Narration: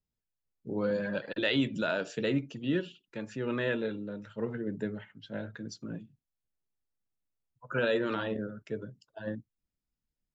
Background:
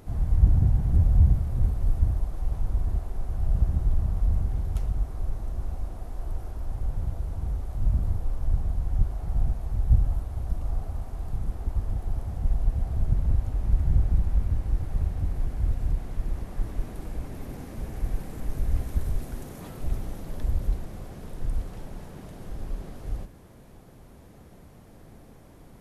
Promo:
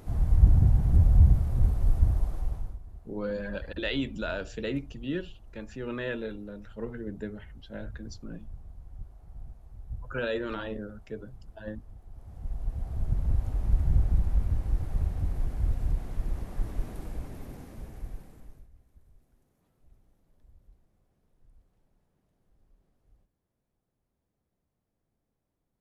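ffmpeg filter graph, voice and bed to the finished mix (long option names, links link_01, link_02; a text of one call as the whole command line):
ffmpeg -i stem1.wav -i stem2.wav -filter_complex "[0:a]adelay=2400,volume=-2.5dB[link_01];[1:a]volume=17dB,afade=type=out:start_time=2.31:duration=0.48:silence=0.112202,afade=type=in:start_time=12.11:duration=1.4:silence=0.141254,afade=type=out:start_time=16.93:duration=1.76:silence=0.0316228[link_02];[link_01][link_02]amix=inputs=2:normalize=0" out.wav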